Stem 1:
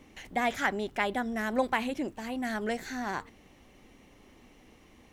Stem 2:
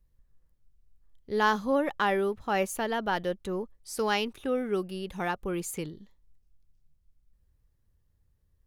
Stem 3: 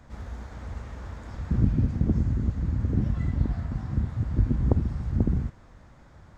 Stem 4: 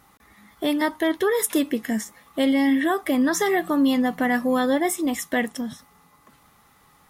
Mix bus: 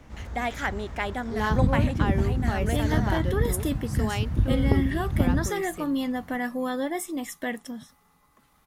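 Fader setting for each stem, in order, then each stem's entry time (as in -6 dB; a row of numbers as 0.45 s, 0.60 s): -0.5 dB, -4.5 dB, 0.0 dB, -7.5 dB; 0.00 s, 0.00 s, 0.00 s, 2.10 s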